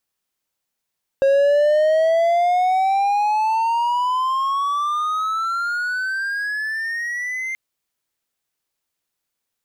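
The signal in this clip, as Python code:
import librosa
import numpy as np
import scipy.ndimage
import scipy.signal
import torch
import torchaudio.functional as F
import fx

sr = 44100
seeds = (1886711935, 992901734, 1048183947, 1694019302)

y = fx.riser_tone(sr, length_s=6.33, level_db=-10.0, wave='triangle', hz=541.0, rise_st=23.5, swell_db=-11.5)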